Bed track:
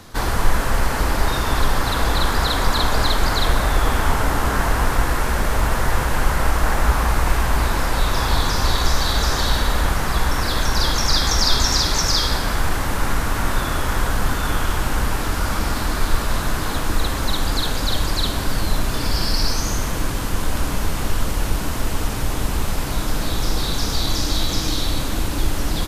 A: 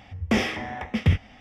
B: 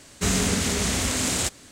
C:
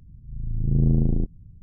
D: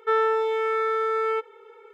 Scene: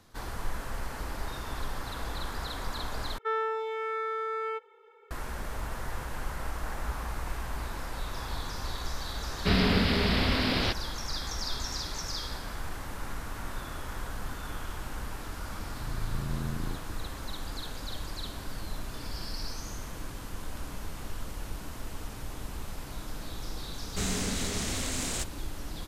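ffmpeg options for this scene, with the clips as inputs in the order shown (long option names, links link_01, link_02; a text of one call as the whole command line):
ffmpeg -i bed.wav -i cue0.wav -i cue1.wav -i cue2.wav -i cue3.wav -filter_complex "[2:a]asplit=2[link_01][link_02];[0:a]volume=-17dB[link_03];[4:a]highpass=430[link_04];[link_01]aresample=11025,aresample=44100[link_05];[3:a]acompressor=threshold=-28dB:ratio=6:attack=3.2:release=140:knee=1:detection=peak[link_06];[link_02]asoftclip=type=tanh:threshold=-12dB[link_07];[link_03]asplit=2[link_08][link_09];[link_08]atrim=end=3.184[link_10];[link_04]atrim=end=1.93,asetpts=PTS-STARTPTS,volume=-7dB[link_11];[link_09]atrim=start=5.106[link_12];[link_05]atrim=end=1.71,asetpts=PTS-STARTPTS,volume=-0.5dB,afade=type=in:duration=0.004:curve=hsin,afade=type=out:start_time=1.706:duration=0.004:curve=hsin,adelay=9240[link_13];[link_06]atrim=end=1.62,asetpts=PTS-STARTPTS,volume=-2dB,afade=type=in:duration=0.004:curve=hsin,afade=type=out:start_time=1.616:duration=0.004:curve=hsin,adelay=15510[link_14];[link_07]atrim=end=1.71,asetpts=PTS-STARTPTS,volume=-8.5dB,afade=type=in:duration=0.004:curve=hsin,afade=type=out:start_time=1.706:duration=0.004:curve=hsin,adelay=23750[link_15];[link_10][link_11]acrossfade=duration=0.004:curve1=hsin:curve2=hsin[link_16];[link_16][link_12]acrossfade=duration=0.004:curve1=hsin:curve2=hsin[link_17];[link_17][link_13][link_14][link_15]amix=inputs=4:normalize=0" out.wav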